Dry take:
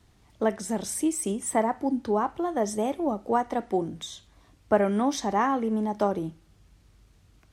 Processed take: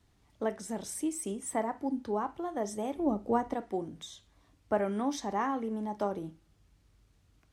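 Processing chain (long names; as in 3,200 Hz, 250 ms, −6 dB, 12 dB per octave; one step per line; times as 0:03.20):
0:02.95–0:03.54: low-shelf EQ 360 Hz +10 dB
convolution reverb, pre-delay 4 ms, DRR 16 dB
level −7.5 dB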